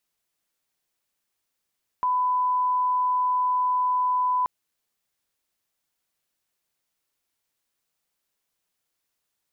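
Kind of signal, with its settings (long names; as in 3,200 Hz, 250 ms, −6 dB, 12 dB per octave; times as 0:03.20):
line-up tone −20 dBFS 2.43 s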